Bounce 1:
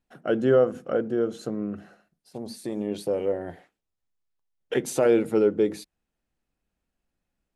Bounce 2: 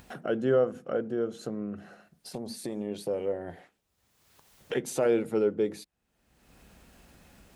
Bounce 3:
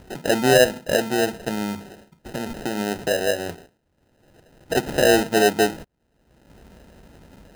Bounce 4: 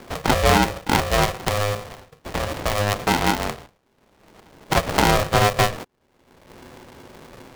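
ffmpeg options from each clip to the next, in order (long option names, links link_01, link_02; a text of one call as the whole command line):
ffmpeg -i in.wav -af "highpass=44,equalizer=frequency=310:width_type=o:width=0.27:gain=-3,acompressor=mode=upward:threshold=-26dB:ratio=2.5,volume=-4.5dB" out.wav
ffmpeg -i in.wav -af "acrusher=samples=39:mix=1:aa=0.000001,volume=8.5dB" out.wav
ffmpeg -i in.wav -filter_complex "[0:a]lowpass=5700,acrossover=split=250[link_01][link_02];[link_02]acompressor=threshold=-18dB:ratio=5[link_03];[link_01][link_03]amix=inputs=2:normalize=0,aeval=exprs='val(0)*sgn(sin(2*PI*310*n/s))':channel_layout=same,volume=4dB" out.wav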